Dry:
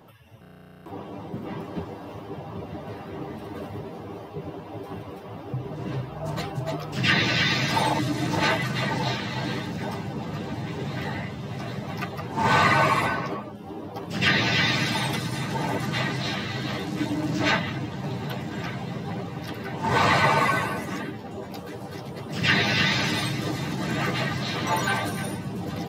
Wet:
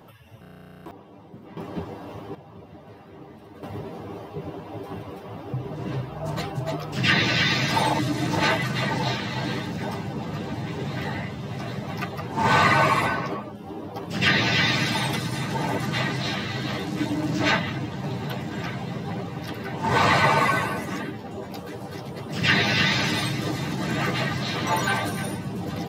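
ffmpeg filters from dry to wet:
-af "asetnsamples=n=441:p=0,asendcmd='0.91 volume volume -10dB;1.57 volume volume 0.5dB;2.35 volume volume -9dB;3.63 volume volume 1dB',volume=2.5dB"

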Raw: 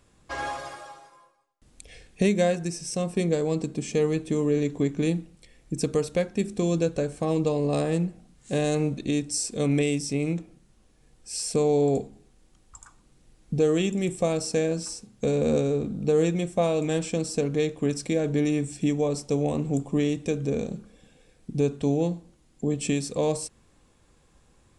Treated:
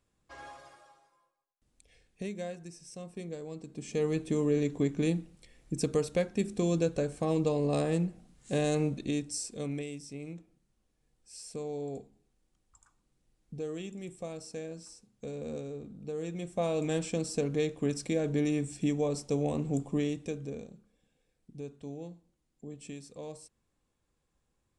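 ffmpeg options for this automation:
-af "volume=6.5dB,afade=t=in:st=3.65:d=0.55:silence=0.251189,afade=t=out:st=8.83:d=1.05:silence=0.266073,afade=t=in:st=16.21:d=0.63:silence=0.298538,afade=t=out:st=19.86:d=0.87:silence=0.223872"

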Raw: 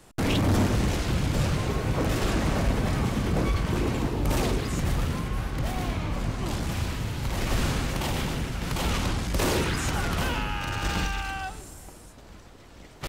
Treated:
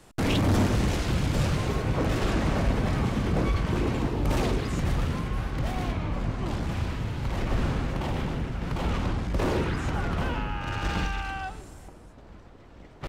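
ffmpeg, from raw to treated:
-af "asetnsamples=n=441:p=0,asendcmd='1.82 lowpass f 4200;5.92 lowpass f 2300;7.42 lowpass f 1400;10.66 lowpass f 2800;11.88 lowpass f 1500',lowpass=f=9.1k:p=1"

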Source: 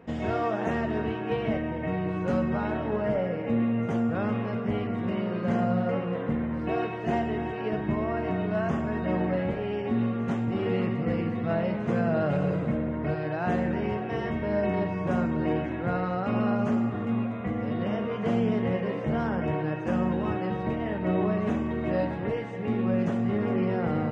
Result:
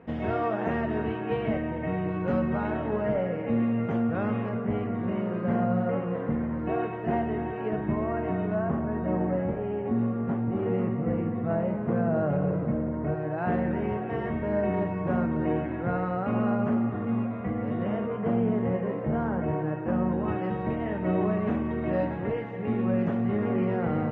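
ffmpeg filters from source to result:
-af "asetnsamples=n=441:p=0,asendcmd='4.49 lowpass f 1900;8.55 lowpass f 1300;13.38 lowpass f 2000;18.06 lowpass f 1500;20.28 lowpass f 2500',lowpass=2.8k"

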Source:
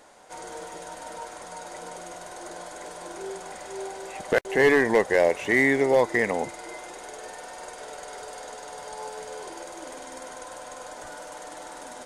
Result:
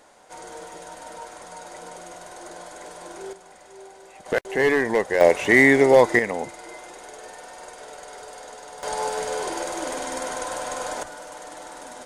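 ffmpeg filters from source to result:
-af "asetnsamples=n=441:p=0,asendcmd='3.33 volume volume -9dB;4.26 volume volume -1dB;5.21 volume volume 6dB;6.19 volume volume -1dB;8.83 volume volume 10dB;11.03 volume volume 1dB',volume=-0.5dB"

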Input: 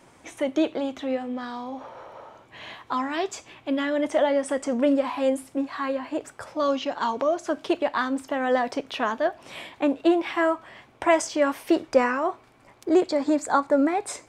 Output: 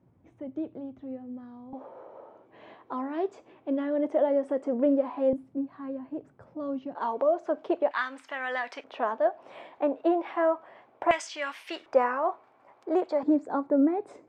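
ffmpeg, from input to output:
-af "asetnsamples=n=441:p=0,asendcmd='1.73 bandpass f 410;5.33 bandpass f 170;6.95 bandpass f 570;7.91 bandpass f 2000;8.84 bandpass f 650;11.11 bandpass f 2600;11.86 bandpass f 790;13.23 bandpass f 320',bandpass=f=110:t=q:w=1.2:csg=0"

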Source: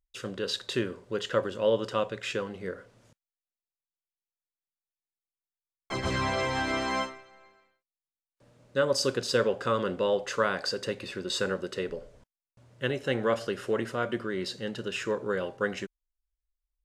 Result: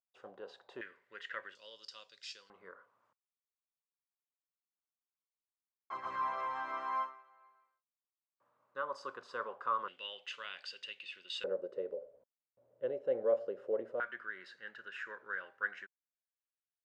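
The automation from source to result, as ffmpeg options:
-af "asetnsamples=n=441:p=0,asendcmd='0.81 bandpass f 1900;1.55 bandpass f 4900;2.5 bandpass f 1100;9.88 bandpass f 2900;11.44 bandpass f 540;14 bandpass f 1600',bandpass=f=780:t=q:w=4.8:csg=0"

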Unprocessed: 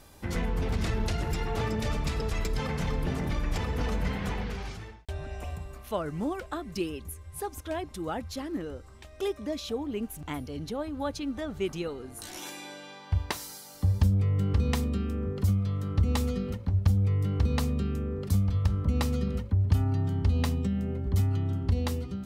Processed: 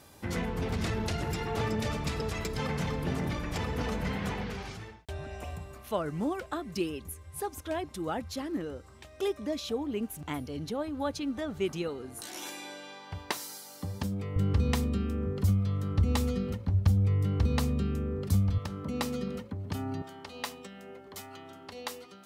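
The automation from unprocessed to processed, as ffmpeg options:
-af "asetnsamples=n=441:p=0,asendcmd='12.21 highpass f 200;14.36 highpass f 57;18.58 highpass f 210;20.02 highpass f 620',highpass=82"

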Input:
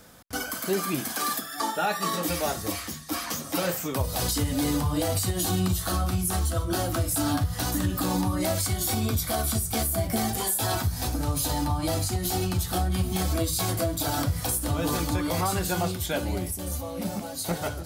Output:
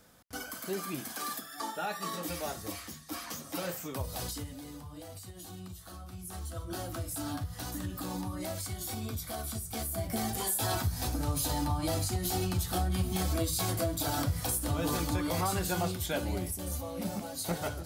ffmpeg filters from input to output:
-af "volume=6.5dB,afade=t=out:st=4.15:d=0.46:silence=0.281838,afade=t=in:st=6.07:d=0.68:silence=0.354813,afade=t=in:st=9.66:d=0.92:silence=0.473151"

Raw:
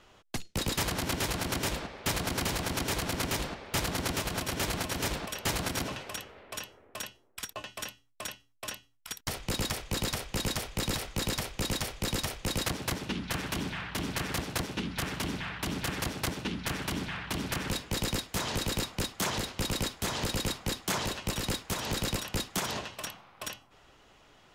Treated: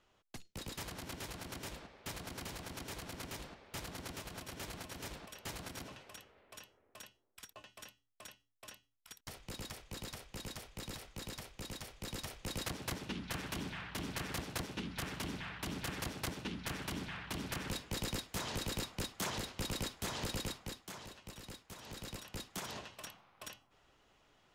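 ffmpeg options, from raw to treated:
-af "volume=0.5dB,afade=t=in:st=11.86:d=1.07:silence=0.473151,afade=t=out:st=20.35:d=0.57:silence=0.298538,afade=t=in:st=21.75:d=1.07:silence=0.398107"

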